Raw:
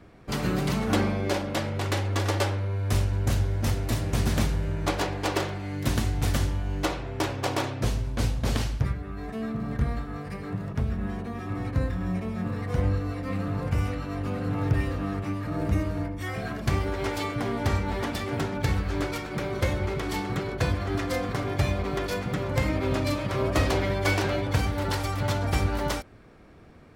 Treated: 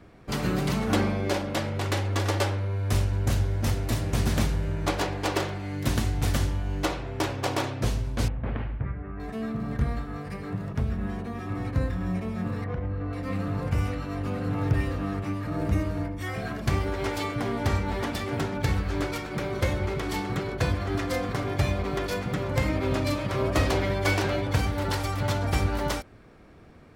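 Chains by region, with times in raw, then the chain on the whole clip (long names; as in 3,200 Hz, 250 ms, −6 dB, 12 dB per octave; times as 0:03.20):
0:08.28–0:09.20: inverse Chebyshev low-pass filter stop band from 7,200 Hz, stop band 60 dB + downward compressor 1.5 to 1, threshold −32 dBFS
0:12.64–0:13.13: low-pass filter 2,200 Hz + downward compressor, threshold −26 dBFS
whole clip: no processing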